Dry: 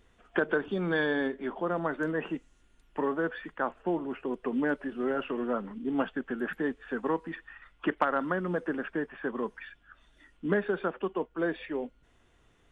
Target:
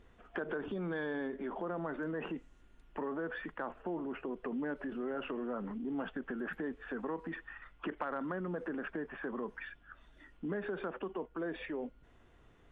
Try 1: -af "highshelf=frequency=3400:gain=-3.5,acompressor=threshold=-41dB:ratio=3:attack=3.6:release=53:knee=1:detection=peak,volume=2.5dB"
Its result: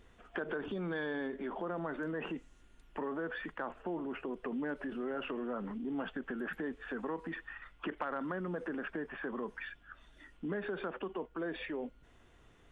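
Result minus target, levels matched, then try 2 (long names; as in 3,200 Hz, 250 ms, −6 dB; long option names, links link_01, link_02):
4,000 Hz band +3.5 dB
-af "highshelf=frequency=3400:gain=-12.5,acompressor=threshold=-41dB:ratio=3:attack=3.6:release=53:knee=1:detection=peak,volume=2.5dB"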